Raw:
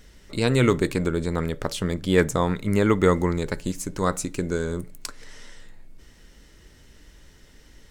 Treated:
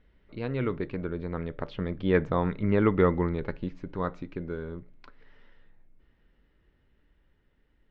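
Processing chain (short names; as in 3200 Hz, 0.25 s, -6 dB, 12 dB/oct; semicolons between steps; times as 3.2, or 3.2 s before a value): Doppler pass-by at 2.75, 7 m/s, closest 7.4 m; Bessel low-pass 2200 Hz, order 6; gain -3 dB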